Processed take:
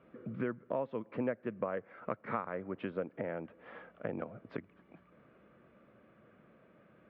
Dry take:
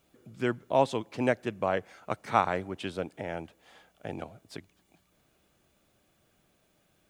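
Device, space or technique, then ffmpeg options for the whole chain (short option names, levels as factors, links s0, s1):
bass amplifier: -af "acompressor=threshold=0.00631:ratio=4,highpass=83,equalizer=f=83:t=q:w=4:g=-8,equalizer=f=220:t=q:w=4:g=5,equalizer=f=510:t=q:w=4:g=6,equalizer=f=790:t=q:w=4:g=-7,equalizer=f=1200:t=q:w=4:g=4,lowpass=f=2100:w=0.5412,lowpass=f=2100:w=1.3066,volume=2.24"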